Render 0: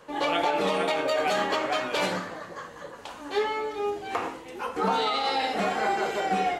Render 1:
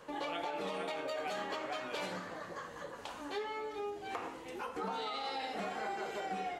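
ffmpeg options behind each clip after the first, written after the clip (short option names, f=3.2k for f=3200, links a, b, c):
-af "acompressor=threshold=-38dB:ratio=2.5,volume=-3dB"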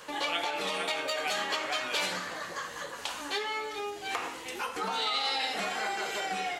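-af "tiltshelf=f=1.3k:g=-7.5,volume=8dB"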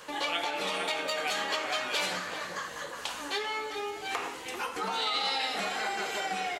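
-filter_complex "[0:a]asplit=2[a][b];[b]adelay=390.7,volume=-10dB,highshelf=f=4k:g=-8.79[c];[a][c]amix=inputs=2:normalize=0"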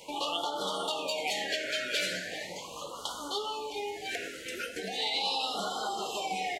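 -af "afftfilt=real='re*(1-between(b*sr/1024,920*pow(2100/920,0.5+0.5*sin(2*PI*0.39*pts/sr))/1.41,920*pow(2100/920,0.5+0.5*sin(2*PI*0.39*pts/sr))*1.41))':imag='im*(1-between(b*sr/1024,920*pow(2100/920,0.5+0.5*sin(2*PI*0.39*pts/sr))/1.41,920*pow(2100/920,0.5+0.5*sin(2*PI*0.39*pts/sr))*1.41))':win_size=1024:overlap=0.75"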